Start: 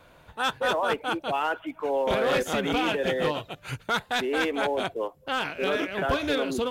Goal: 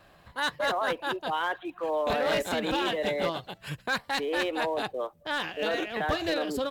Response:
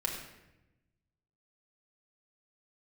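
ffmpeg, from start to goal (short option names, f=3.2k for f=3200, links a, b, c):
-af "asetrate=49501,aresample=44100,atempo=0.890899,volume=-2.5dB"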